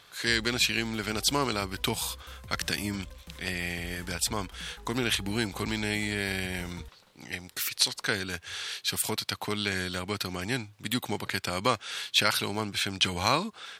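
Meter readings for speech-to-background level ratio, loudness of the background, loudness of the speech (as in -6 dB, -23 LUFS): 18.5 dB, -48.0 LUFS, -29.5 LUFS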